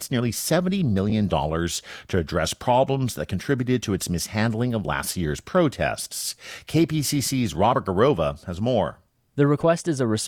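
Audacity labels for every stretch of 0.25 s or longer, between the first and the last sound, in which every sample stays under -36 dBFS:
8.910000	9.380000	silence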